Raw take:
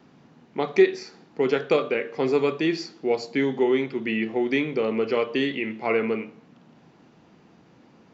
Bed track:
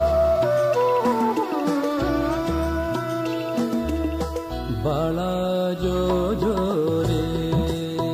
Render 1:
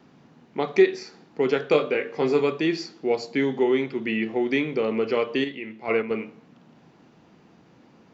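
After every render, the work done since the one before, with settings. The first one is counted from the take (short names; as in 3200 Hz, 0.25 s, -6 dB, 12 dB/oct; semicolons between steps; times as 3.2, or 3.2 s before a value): 1.69–2.41 doubler 20 ms -7 dB; 5.44–6.11 gate -25 dBFS, range -7 dB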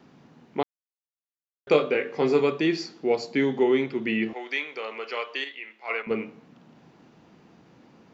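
0.63–1.67 mute; 4.33–6.07 HPF 890 Hz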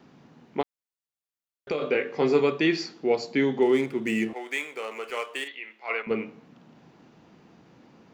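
0.61–1.82 compressor, threshold -24 dBFS; 2.57–3.06 dynamic EQ 2000 Hz, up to +4 dB, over -42 dBFS, Q 0.71; 3.62–5.48 median filter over 9 samples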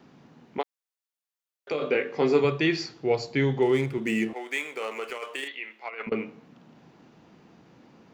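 0.58–1.72 HPF 440 Hz; 2.44–3.98 resonant low shelf 160 Hz +6.5 dB, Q 3; 4.65–6.12 negative-ratio compressor -33 dBFS, ratio -0.5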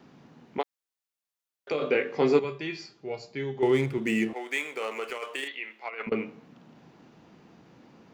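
2.39–3.63 resonator 200 Hz, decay 0.22 s, mix 80%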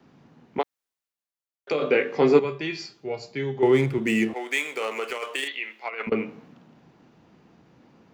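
in parallel at +2 dB: compressor, threshold -34 dBFS, peak gain reduction 17 dB; on the sum: three-band expander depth 40%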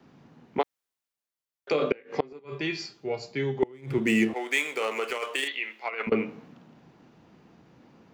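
flipped gate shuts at -11 dBFS, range -29 dB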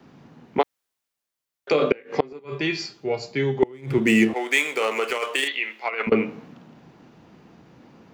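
gain +5.5 dB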